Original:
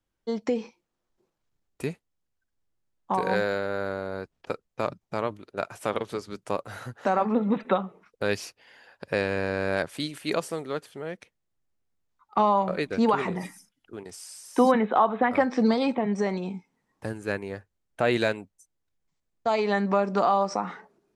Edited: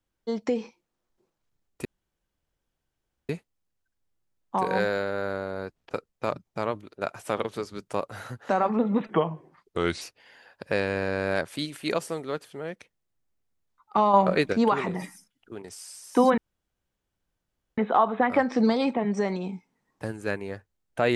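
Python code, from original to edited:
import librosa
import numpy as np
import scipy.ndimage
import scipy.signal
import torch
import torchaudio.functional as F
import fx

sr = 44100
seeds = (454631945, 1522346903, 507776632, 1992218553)

y = fx.edit(x, sr, fx.insert_room_tone(at_s=1.85, length_s=1.44),
    fx.speed_span(start_s=7.66, length_s=0.77, speed=0.84),
    fx.clip_gain(start_s=12.55, length_s=0.39, db=5.5),
    fx.insert_room_tone(at_s=14.79, length_s=1.4), tone=tone)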